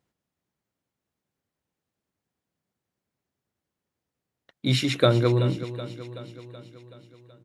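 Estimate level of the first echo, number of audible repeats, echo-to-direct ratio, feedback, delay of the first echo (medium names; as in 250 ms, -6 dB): -13.5 dB, 5, -11.5 dB, 59%, 377 ms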